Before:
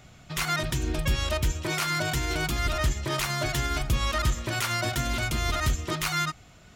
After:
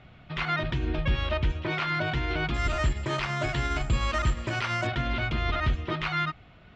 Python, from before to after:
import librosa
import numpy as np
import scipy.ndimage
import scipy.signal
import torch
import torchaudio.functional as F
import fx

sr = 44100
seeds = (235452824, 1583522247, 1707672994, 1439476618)

y = fx.resample_bad(x, sr, factor=6, down='filtered', up='zero_stuff', at=(2.54, 4.87))
y = scipy.signal.sosfilt(scipy.signal.butter(4, 3400.0, 'lowpass', fs=sr, output='sos'), y)